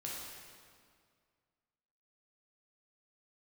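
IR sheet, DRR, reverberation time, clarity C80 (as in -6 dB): -5.0 dB, 2.1 s, 1.0 dB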